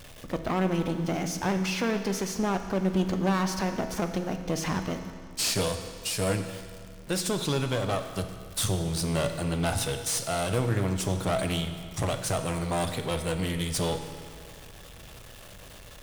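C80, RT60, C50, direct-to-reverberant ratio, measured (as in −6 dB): 9.0 dB, 2.1 s, 8.0 dB, 6.5 dB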